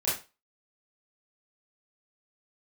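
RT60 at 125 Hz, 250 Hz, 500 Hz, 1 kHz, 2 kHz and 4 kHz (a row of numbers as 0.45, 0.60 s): 0.30, 0.25, 0.30, 0.30, 0.30, 0.25 s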